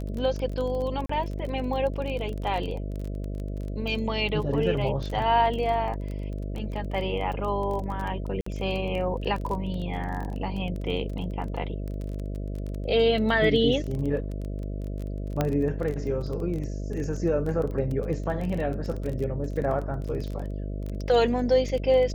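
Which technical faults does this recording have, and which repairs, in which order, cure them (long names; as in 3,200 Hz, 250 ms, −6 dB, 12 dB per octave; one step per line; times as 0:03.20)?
mains buzz 50 Hz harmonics 13 −32 dBFS
surface crackle 21 per second −31 dBFS
0:01.06–0:01.09: drop-out 34 ms
0:08.41–0:08.46: drop-out 54 ms
0:15.41: click −11 dBFS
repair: click removal
hum removal 50 Hz, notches 13
repair the gap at 0:01.06, 34 ms
repair the gap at 0:08.41, 54 ms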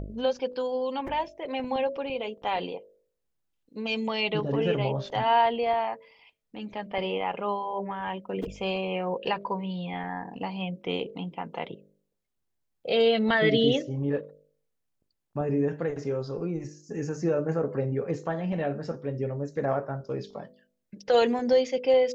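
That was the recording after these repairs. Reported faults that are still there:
none of them is left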